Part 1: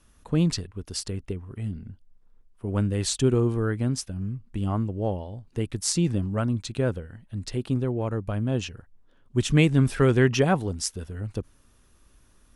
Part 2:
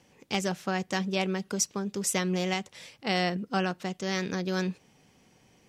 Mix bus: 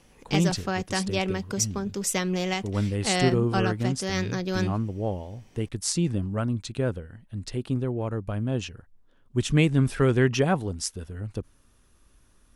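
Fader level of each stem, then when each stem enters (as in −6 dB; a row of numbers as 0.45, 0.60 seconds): −1.5, +1.5 decibels; 0.00, 0.00 seconds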